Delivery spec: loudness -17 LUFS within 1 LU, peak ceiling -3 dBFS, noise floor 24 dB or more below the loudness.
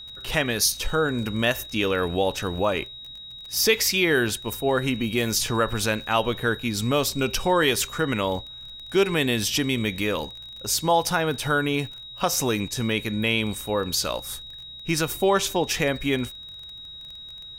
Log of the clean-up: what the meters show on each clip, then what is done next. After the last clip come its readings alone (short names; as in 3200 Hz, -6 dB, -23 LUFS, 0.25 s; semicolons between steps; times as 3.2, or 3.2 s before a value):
ticks 24/s; steady tone 3800 Hz; tone level -38 dBFS; loudness -24.0 LUFS; peak -7.5 dBFS; loudness target -17.0 LUFS
-> de-click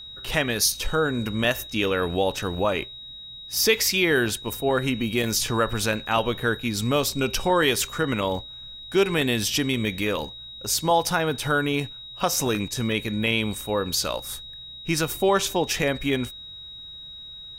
ticks 1.8/s; steady tone 3800 Hz; tone level -38 dBFS
-> notch 3800 Hz, Q 30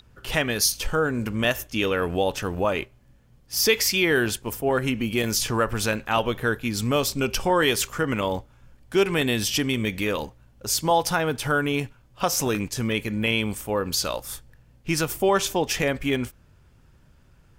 steady tone none; loudness -24.0 LUFS; peak -7.5 dBFS; loudness target -17.0 LUFS
-> gain +7 dB; limiter -3 dBFS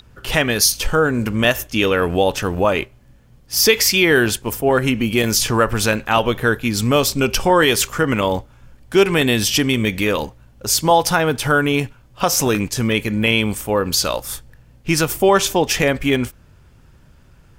loudness -17.0 LUFS; peak -3.0 dBFS; noise floor -49 dBFS